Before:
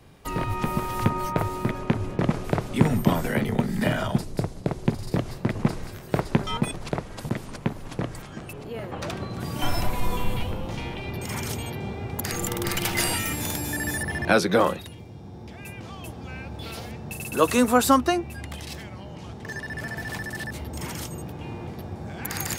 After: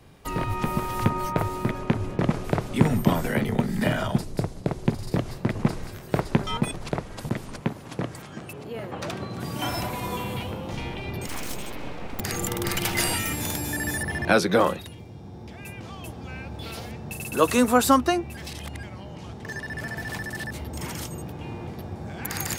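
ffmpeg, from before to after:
-filter_complex "[0:a]asettb=1/sr,asplit=3[a][b][c];[a]atrim=end=7.614[d];[b]atrim=start=7.61:end=10.73,asetpts=PTS-STARTPTS,afade=t=in:d=0.004:c=qsin,afade=t=out:st=3.116:d=0.004:c=qsin,highpass=98[e];[c]atrim=start=10.726[f];[d][e]acrossfade=d=0.004:c1=hsin:c2=qsin[g];[g][f]acrossfade=d=0.004:c1=qsin:c2=hsin,asettb=1/sr,asplit=3[h][i][j];[h]atrim=end=11.274[k];[i]atrim=start=11.27:end=12.2,asetpts=PTS-STARTPTS,afade=t=in:d=0.004:c=qsin,afade=t=out:st=0.926:d=0.004:c=qsin,aeval=exprs='abs(val(0))':c=same[l];[j]atrim=start=12.196[m];[k][l]acrossfade=d=0.004:c1=hsin:c2=qsin[n];[n][m]acrossfade=d=0.004:c1=qsin:c2=hsin,asplit=3[o][p][q];[o]atrim=end=18.372[r];[p]atrim=start=18.368:end=18.832,asetpts=PTS-STARTPTS,areverse[s];[q]atrim=start=18.828[t];[r][s]acrossfade=d=0.004:c1=hsin:c2=hsin[u];[u][t]acrossfade=d=0.004:c1=hsin:c2=hsin"

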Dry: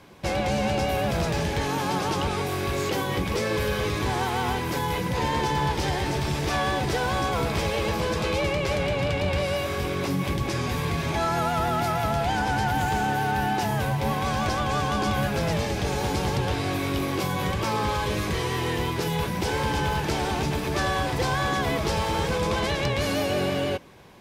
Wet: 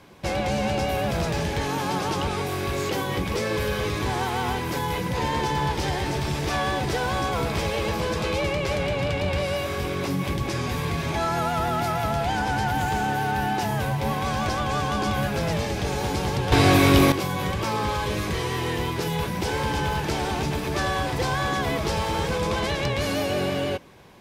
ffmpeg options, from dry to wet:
-filter_complex "[0:a]asplit=3[a][b][c];[a]atrim=end=16.522[d];[b]atrim=start=16.518:end=17.122,asetpts=PTS-STARTPTS,volume=10.5dB[e];[c]atrim=start=17.118[f];[d][e]acrossfade=d=0.004:c1=hsin:c2=hsin[g];[g][f]acrossfade=d=0.004:c1=hsin:c2=hsin"

